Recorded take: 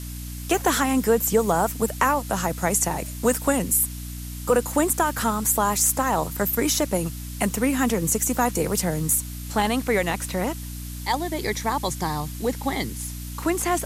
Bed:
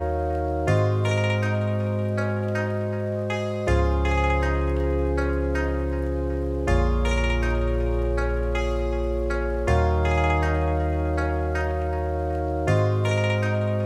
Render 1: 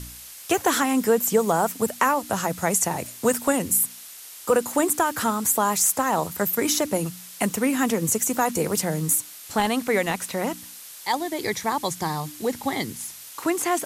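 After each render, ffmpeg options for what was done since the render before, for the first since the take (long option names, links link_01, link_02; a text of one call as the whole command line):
ffmpeg -i in.wav -af "bandreject=frequency=60:width_type=h:width=4,bandreject=frequency=120:width_type=h:width=4,bandreject=frequency=180:width_type=h:width=4,bandreject=frequency=240:width_type=h:width=4,bandreject=frequency=300:width_type=h:width=4" out.wav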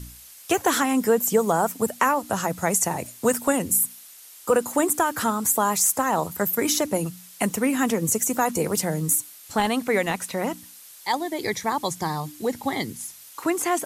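ffmpeg -i in.wav -af "afftdn=noise_reduction=6:noise_floor=-42" out.wav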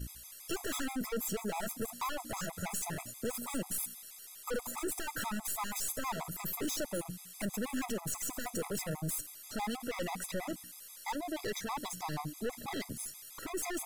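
ffmpeg -i in.wav -af "aeval=exprs='(tanh(39.8*val(0)+0.4)-tanh(0.4))/39.8':channel_layout=same,afftfilt=real='re*gt(sin(2*PI*6.2*pts/sr)*(1-2*mod(floor(b*sr/1024/660),2)),0)':imag='im*gt(sin(2*PI*6.2*pts/sr)*(1-2*mod(floor(b*sr/1024/660),2)),0)':win_size=1024:overlap=0.75" out.wav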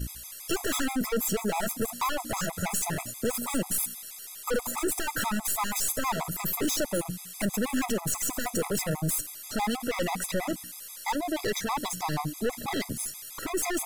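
ffmpeg -i in.wav -af "volume=8dB" out.wav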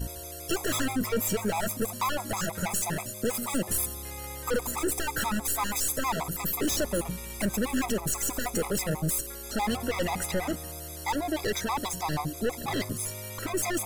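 ffmpeg -i in.wav -i bed.wav -filter_complex "[1:a]volume=-19.5dB[link_01];[0:a][link_01]amix=inputs=2:normalize=0" out.wav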